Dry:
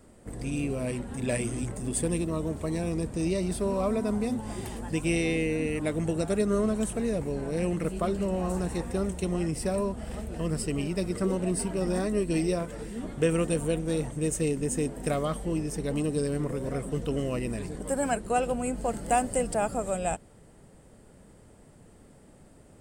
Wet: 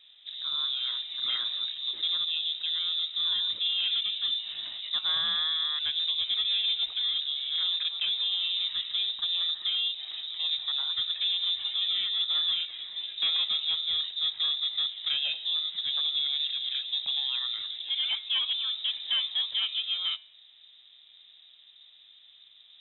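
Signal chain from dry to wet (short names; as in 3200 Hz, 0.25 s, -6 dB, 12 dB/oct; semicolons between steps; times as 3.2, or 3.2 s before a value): HPF 72 Hz 12 dB/oct; de-hum 208.3 Hz, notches 15; overloaded stage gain 22.5 dB; air absorption 270 m; inverted band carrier 3800 Hz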